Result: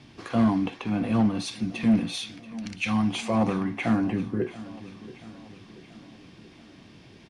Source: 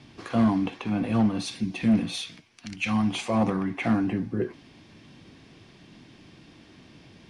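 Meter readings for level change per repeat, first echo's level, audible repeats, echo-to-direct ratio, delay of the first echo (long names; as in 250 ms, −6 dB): −5.5 dB, −17.5 dB, 4, −16.0 dB, 682 ms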